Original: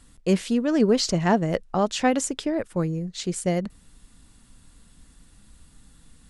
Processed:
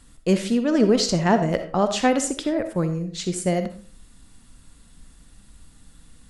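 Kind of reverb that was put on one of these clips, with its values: digital reverb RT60 0.43 s, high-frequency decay 0.65×, pre-delay 20 ms, DRR 8 dB; gain +1.5 dB

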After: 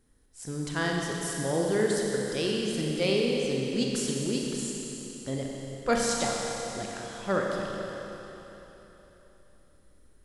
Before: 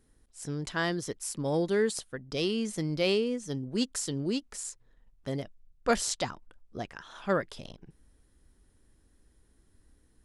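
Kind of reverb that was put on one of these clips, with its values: Schroeder reverb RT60 3.6 s, combs from 30 ms, DRR -1.5 dB; gain -1 dB

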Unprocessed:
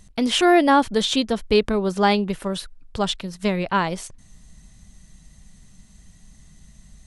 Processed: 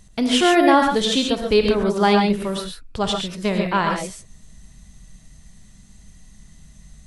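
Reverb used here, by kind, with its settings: non-linear reverb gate 0.16 s rising, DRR 2 dB

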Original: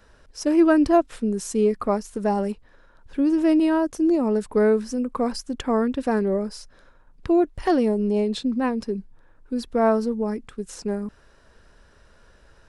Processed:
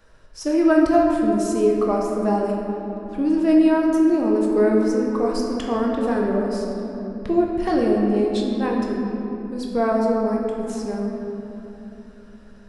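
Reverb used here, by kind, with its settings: shoebox room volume 190 m³, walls hard, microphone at 0.57 m; gain -2.5 dB

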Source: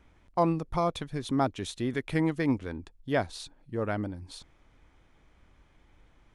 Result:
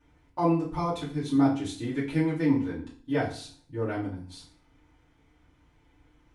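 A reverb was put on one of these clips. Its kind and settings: FDN reverb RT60 0.46 s, low-frequency decay 1.25×, high-frequency decay 0.9×, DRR -9 dB; gain -10.5 dB

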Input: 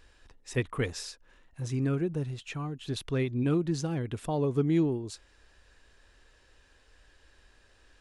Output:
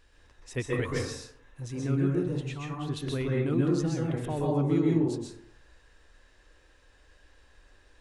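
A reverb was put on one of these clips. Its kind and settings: plate-style reverb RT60 0.68 s, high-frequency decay 0.4×, pre-delay 0.115 s, DRR -3 dB; gain -3.5 dB

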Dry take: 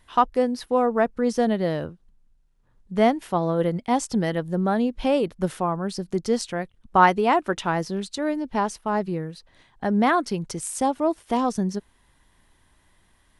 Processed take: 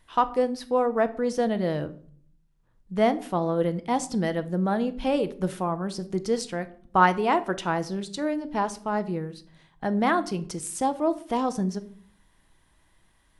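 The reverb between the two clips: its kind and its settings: shoebox room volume 650 m³, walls furnished, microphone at 0.64 m; gain -3 dB

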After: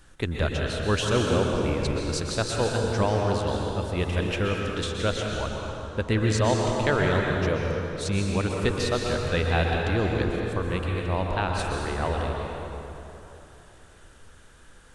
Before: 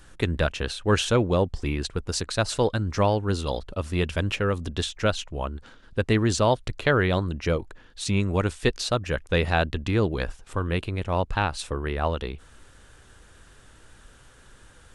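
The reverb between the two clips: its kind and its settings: plate-style reverb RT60 3.2 s, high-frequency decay 0.65×, pre-delay 0.11 s, DRR -0.5 dB; gain -3.5 dB

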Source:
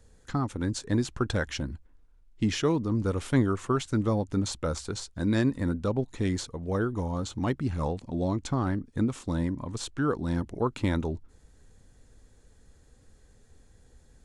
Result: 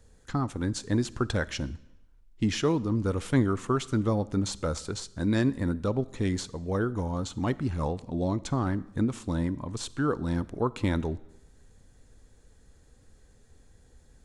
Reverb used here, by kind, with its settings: digital reverb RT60 0.87 s, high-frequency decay 0.95×, pre-delay 5 ms, DRR 19 dB

